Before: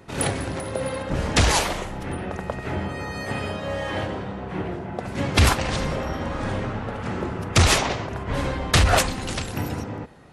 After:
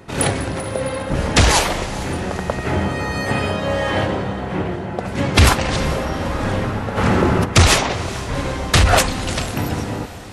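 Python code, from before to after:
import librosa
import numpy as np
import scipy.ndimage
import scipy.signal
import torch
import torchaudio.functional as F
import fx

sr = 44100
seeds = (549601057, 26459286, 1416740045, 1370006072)

y = fx.rider(x, sr, range_db=5, speed_s=2.0)
y = fx.echo_diffused(y, sr, ms=454, feedback_pct=58, wet_db=-16.0)
y = fx.env_flatten(y, sr, amount_pct=50, at=(6.96, 7.44), fade=0.02)
y = y * 10.0 ** (3.5 / 20.0)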